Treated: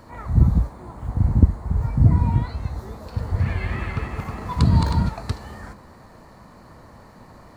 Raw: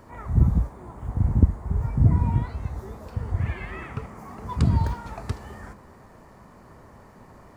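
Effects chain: 2.98–5.09 regenerating reverse delay 0.158 s, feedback 67%, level -3.5 dB; bell 4200 Hz +10 dB 0.26 oct; notch 400 Hz, Q 12; gain +3 dB

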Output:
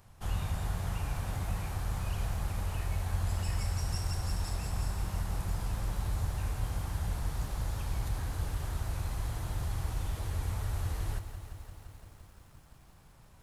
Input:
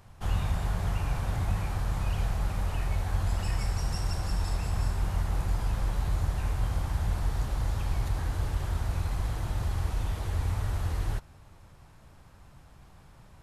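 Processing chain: high shelf 6700 Hz +8 dB; lo-fi delay 0.172 s, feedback 80%, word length 9-bit, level -12 dB; gain -5 dB

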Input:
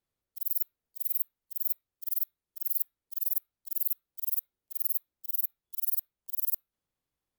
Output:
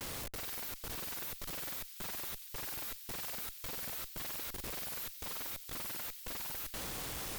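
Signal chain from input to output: notches 50/100/150/200/250/300/350/400 Hz; compressor 12:1, threshold -32 dBFS, peak gain reduction 10 dB; power-law curve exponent 0.35; level quantiser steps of 23 dB; Schmitt trigger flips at -52.5 dBFS; on a send: thin delay 0.375 s, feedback 81%, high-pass 3200 Hz, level -11 dB; on the sum: gain +6 dB

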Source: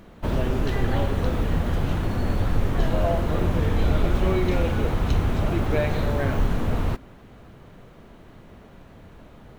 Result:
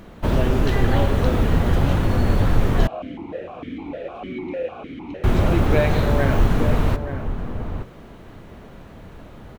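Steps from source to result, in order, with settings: outdoor echo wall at 150 m, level -9 dB; 2.87–5.24 vowel sequencer 6.6 Hz; gain +5 dB

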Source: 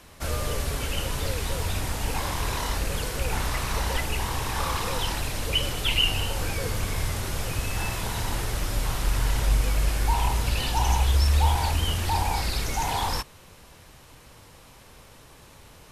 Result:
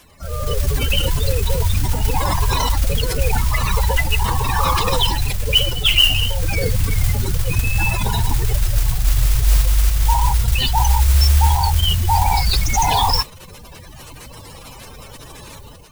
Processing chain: AGC gain up to 12.5 dB; high shelf 2900 Hz +7.5 dB; spectral gate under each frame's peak -15 dB strong; modulation noise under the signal 14 dB; in parallel at 0 dB: limiter -8 dBFS, peak gain reduction 9.5 dB; on the sum: gain -5.5 dB

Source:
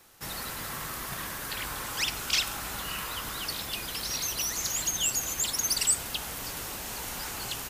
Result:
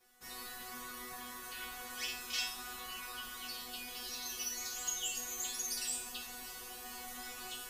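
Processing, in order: resonator bank B3 fifth, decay 0.48 s; gain +9 dB

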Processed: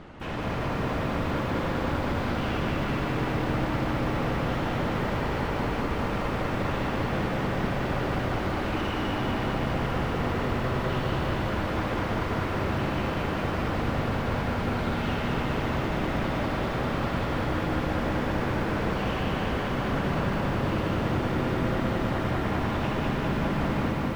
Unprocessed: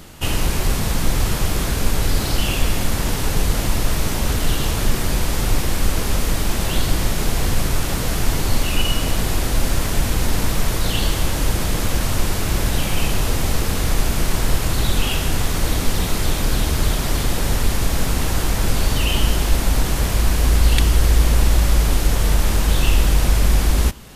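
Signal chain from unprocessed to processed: tracing distortion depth 0.16 ms; in parallel at +0.5 dB: limiter -14 dBFS, peak gain reduction 11 dB; on the sum: reverb removal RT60 0.89 s; wavefolder -18 dBFS; LPF 1800 Hz 12 dB/oct; low shelf 110 Hz -8.5 dB; reverb RT60 2.5 s, pre-delay 54 ms, DRR -0.5 dB; lo-fi delay 0.199 s, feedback 80%, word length 8-bit, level -4 dB; gain -7 dB

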